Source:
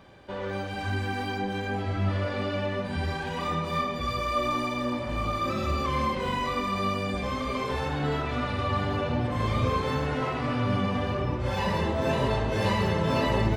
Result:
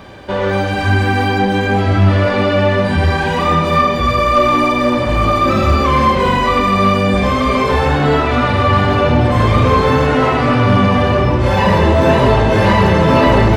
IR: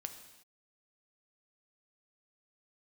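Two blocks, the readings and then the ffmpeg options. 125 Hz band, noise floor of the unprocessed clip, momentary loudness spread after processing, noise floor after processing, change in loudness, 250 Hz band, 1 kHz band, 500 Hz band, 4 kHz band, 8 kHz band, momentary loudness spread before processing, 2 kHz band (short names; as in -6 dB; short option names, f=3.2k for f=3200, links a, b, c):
+15.0 dB, -33 dBFS, 3 LU, -17 dBFS, +15.5 dB, +15.0 dB, +15.5 dB, +16.0 dB, +13.0 dB, +12.0 dB, 5 LU, +15.5 dB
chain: -filter_complex "[0:a]acrossover=split=2700[a][b];[b]acompressor=threshold=-45dB:ratio=4:attack=1:release=60[c];[a][c]amix=inputs=2:normalize=0,aeval=exprs='0.266*sin(PI/2*2*val(0)/0.266)':c=same,asplit=2[d][e];[1:a]atrim=start_sample=2205[f];[e][f]afir=irnorm=-1:irlink=0,volume=8.5dB[g];[d][g]amix=inputs=2:normalize=0,volume=-2.5dB"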